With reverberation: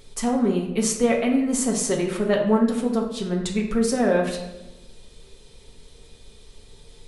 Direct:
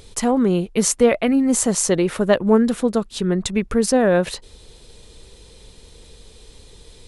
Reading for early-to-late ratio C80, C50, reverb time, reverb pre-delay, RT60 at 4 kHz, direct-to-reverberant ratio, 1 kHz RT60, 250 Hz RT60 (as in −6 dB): 8.5 dB, 5.5 dB, 1.0 s, 4 ms, 0.70 s, −1.0 dB, 1.0 s, 1.2 s